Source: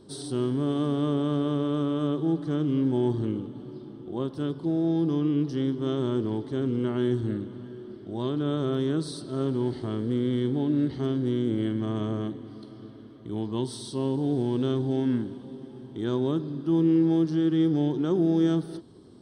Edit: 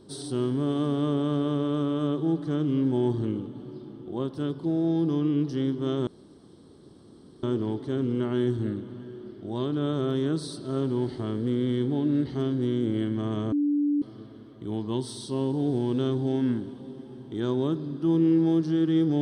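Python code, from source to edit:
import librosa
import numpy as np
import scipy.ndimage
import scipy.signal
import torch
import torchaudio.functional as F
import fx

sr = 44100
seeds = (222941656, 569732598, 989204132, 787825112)

y = fx.edit(x, sr, fx.insert_room_tone(at_s=6.07, length_s=1.36),
    fx.bleep(start_s=12.16, length_s=0.5, hz=291.0, db=-21.0), tone=tone)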